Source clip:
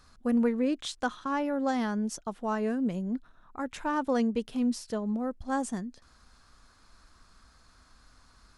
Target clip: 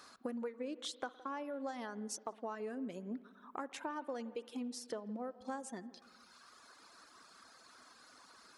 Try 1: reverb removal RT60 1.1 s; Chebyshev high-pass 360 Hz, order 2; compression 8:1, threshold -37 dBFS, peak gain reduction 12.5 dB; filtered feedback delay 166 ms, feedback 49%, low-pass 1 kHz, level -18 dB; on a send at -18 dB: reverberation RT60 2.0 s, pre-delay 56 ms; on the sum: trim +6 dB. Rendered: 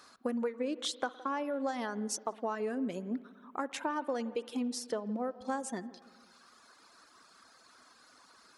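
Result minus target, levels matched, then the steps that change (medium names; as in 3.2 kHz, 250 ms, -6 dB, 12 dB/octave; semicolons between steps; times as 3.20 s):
compression: peak gain reduction -7.5 dB
change: compression 8:1, threshold -45.5 dBFS, peak gain reduction 20 dB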